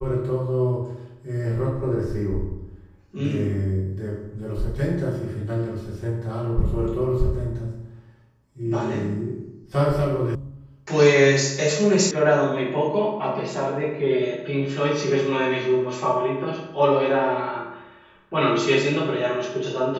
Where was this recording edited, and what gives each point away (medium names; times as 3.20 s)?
10.35 s: sound stops dead
12.11 s: sound stops dead